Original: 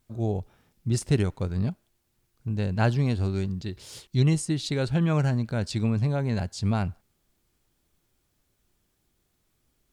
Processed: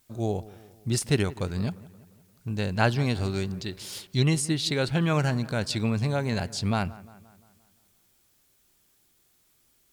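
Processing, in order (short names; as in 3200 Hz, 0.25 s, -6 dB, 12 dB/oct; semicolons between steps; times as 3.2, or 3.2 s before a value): tilt +2 dB/oct; on a send: dark delay 0.174 s, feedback 52%, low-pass 2000 Hz, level -19 dB; on the sum: dynamic EQ 7400 Hz, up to -6 dB, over -47 dBFS, Q 1.1; gain +3.5 dB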